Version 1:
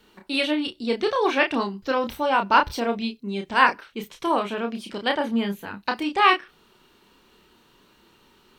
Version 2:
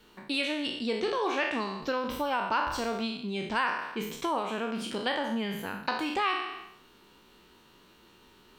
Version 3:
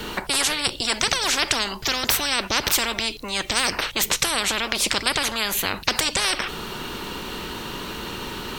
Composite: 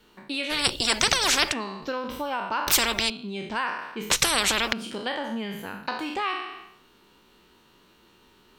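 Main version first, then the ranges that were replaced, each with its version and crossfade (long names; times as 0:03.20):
2
0:00.52–0:01.51: punch in from 3, crossfade 0.06 s
0:02.68–0:03.10: punch in from 3
0:04.10–0:04.73: punch in from 3
not used: 1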